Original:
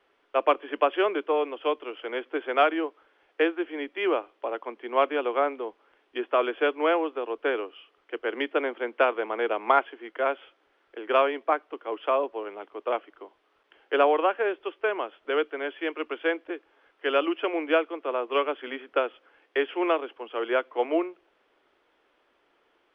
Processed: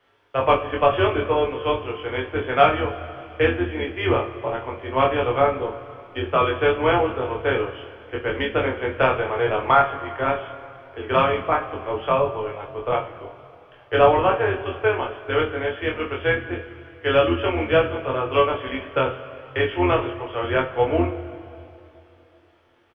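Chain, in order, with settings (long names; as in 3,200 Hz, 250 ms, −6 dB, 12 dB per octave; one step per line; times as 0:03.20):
sub-octave generator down 2 octaves, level +1 dB
double-tracking delay 23 ms −2.5 dB
coupled-rooms reverb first 0.27 s, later 2.9 s, from −18 dB, DRR 1.5 dB
level +1 dB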